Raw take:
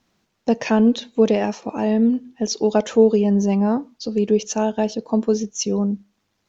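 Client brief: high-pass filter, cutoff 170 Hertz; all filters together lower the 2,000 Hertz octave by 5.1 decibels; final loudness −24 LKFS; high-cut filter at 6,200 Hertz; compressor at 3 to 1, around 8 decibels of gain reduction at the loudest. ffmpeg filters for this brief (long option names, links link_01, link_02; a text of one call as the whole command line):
ffmpeg -i in.wav -af "highpass=170,lowpass=6200,equalizer=frequency=2000:width_type=o:gain=-7,acompressor=threshold=-20dB:ratio=3,volume=1.5dB" out.wav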